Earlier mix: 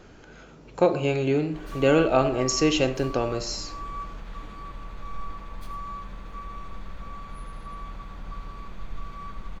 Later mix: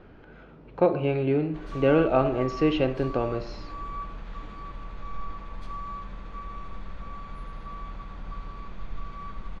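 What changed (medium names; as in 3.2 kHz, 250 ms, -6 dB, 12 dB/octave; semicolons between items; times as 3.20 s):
speech: add distance through air 290 m; master: add distance through air 96 m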